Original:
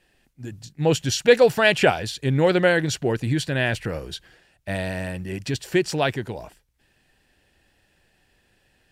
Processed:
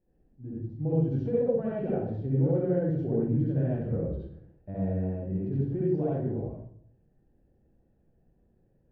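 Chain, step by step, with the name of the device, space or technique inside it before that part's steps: television next door (compressor 4:1, threshold -22 dBFS, peak gain reduction 11.5 dB; LPF 420 Hz 12 dB/oct; reverb RT60 0.65 s, pre-delay 55 ms, DRR -7 dB); gain -7.5 dB

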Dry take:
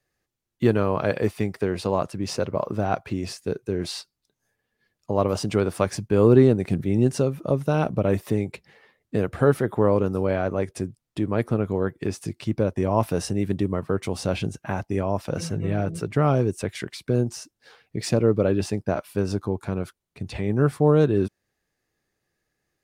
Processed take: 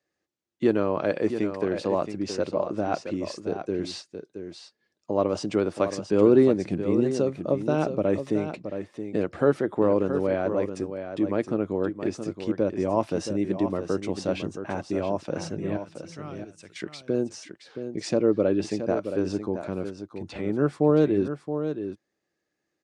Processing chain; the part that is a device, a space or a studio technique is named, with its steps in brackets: 15.77–16.76 passive tone stack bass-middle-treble 5-5-5; car door speaker (speaker cabinet 110–7800 Hz, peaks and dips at 120 Hz -9 dB, 320 Hz +7 dB, 570 Hz +4 dB); echo 0.672 s -9 dB; gain -4 dB

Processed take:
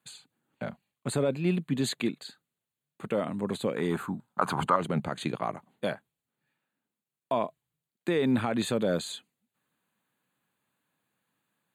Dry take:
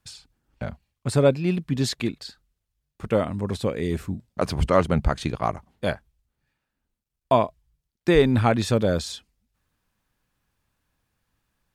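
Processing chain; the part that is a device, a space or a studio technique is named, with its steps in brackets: PA system with an anti-feedback notch (HPF 150 Hz 24 dB/oct; Butterworth band-stop 5400 Hz, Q 2.6; limiter -15.5 dBFS, peak gain reduction 11.5 dB); 3.76–4.76 band shelf 1100 Hz +13.5 dB 1.2 oct; gain -2 dB

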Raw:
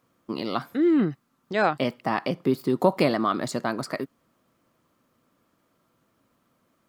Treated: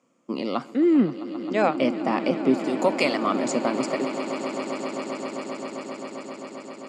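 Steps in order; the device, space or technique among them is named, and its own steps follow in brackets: television speaker (speaker cabinet 160–8400 Hz, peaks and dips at 250 Hz +5 dB, 530 Hz +5 dB, 1600 Hz -7 dB, 2400 Hz +4 dB, 3900 Hz -7 dB, 7100 Hz +9 dB); 2.66–3.25 tilt shelf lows -7.5 dB, about 1200 Hz; swelling echo 0.132 s, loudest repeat 8, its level -16 dB

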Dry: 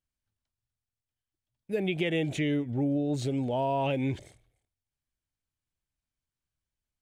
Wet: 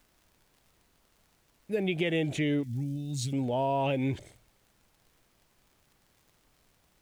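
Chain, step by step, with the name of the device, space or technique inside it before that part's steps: vinyl LP (crackle; pink noise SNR 35 dB); 2.63–3.33 EQ curve 200 Hz 0 dB, 490 Hz -25 dB, 5400 Hz +7 dB

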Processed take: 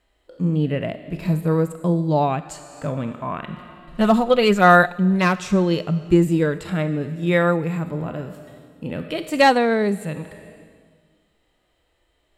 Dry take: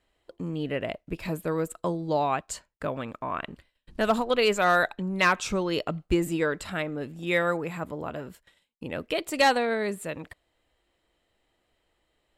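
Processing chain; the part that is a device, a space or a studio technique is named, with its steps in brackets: compressed reverb return (on a send at -4 dB: reverb RT60 1.5 s, pre-delay 13 ms + compressor 12:1, threshold -37 dBFS, peak gain reduction 20.5 dB); 3.43–4.98 on the sum: comb 5.6 ms, depth 43%; dynamic EQ 160 Hz, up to +7 dB, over -45 dBFS, Q 1.2; harmonic-percussive split percussive -10 dB; gain +7 dB

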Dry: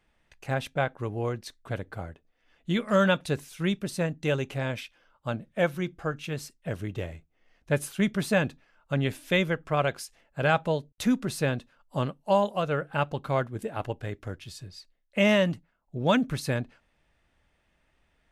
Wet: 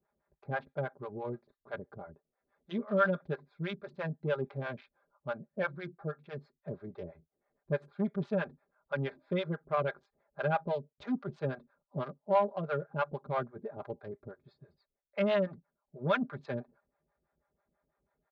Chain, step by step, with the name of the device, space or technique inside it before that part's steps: Wiener smoothing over 15 samples; guitar amplifier with harmonic tremolo (harmonic tremolo 6.1 Hz, depth 100%, crossover 510 Hz; soft clip -20 dBFS, distortion -20 dB; speaker cabinet 90–3700 Hz, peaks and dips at 200 Hz -7 dB, 520 Hz +3 dB, 1900 Hz -6 dB, 2800 Hz -7 dB); comb 5 ms, depth 71%; dynamic EQ 1600 Hz, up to +5 dB, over -48 dBFS, Q 1.6; gain -2.5 dB

